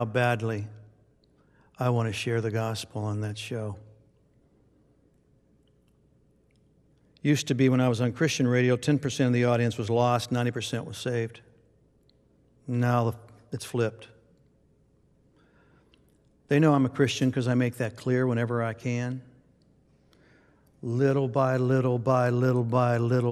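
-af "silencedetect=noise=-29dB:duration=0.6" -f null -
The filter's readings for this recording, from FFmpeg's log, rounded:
silence_start: 0.63
silence_end: 1.81 | silence_duration: 1.18
silence_start: 3.72
silence_end: 7.25 | silence_duration: 3.53
silence_start: 11.27
silence_end: 12.69 | silence_duration: 1.42
silence_start: 13.89
silence_end: 16.51 | silence_duration: 2.62
silence_start: 19.16
silence_end: 20.84 | silence_duration: 1.68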